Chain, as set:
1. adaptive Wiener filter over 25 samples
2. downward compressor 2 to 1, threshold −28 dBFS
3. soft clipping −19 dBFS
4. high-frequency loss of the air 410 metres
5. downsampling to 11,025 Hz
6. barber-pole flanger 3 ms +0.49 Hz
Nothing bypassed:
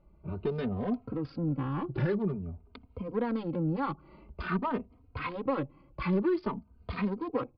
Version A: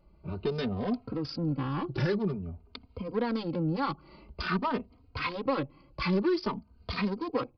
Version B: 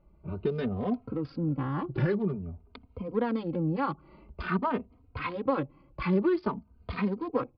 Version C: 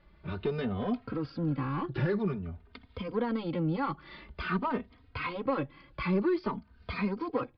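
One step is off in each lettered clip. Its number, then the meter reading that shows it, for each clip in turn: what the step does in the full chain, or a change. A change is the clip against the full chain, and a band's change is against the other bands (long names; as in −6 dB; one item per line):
4, 4 kHz band +10.5 dB
3, distortion level −17 dB
1, 4 kHz band +4.5 dB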